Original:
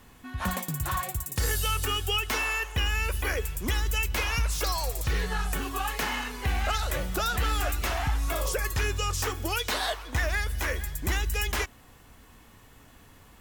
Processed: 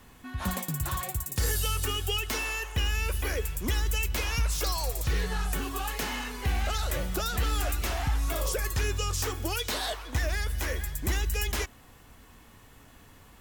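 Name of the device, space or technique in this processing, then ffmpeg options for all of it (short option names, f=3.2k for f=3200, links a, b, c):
one-band saturation: -filter_complex "[0:a]acrossover=split=570|3200[a][b][c];[b]asoftclip=type=tanh:threshold=-34.5dB[d];[a][d][c]amix=inputs=3:normalize=0"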